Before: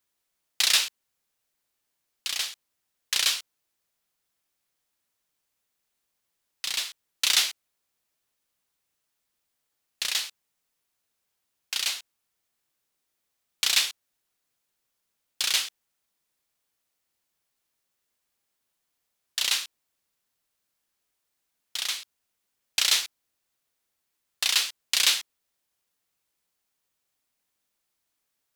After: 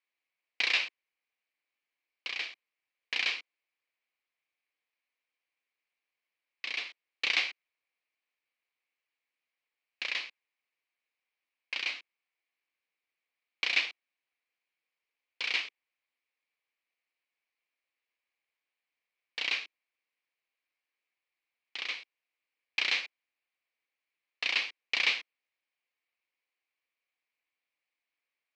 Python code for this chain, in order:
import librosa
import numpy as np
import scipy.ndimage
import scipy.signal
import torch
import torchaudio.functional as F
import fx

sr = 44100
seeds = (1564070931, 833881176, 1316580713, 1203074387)

y = np.where(x < 0.0, 10.0 ** (-12.0 / 20.0) * x, x)
y = fx.cabinet(y, sr, low_hz=340.0, low_slope=24, high_hz=3900.0, hz=(390.0, 620.0, 880.0, 1400.0, 2300.0, 3500.0), db=(-9, -6, -5, -7, 9, -6))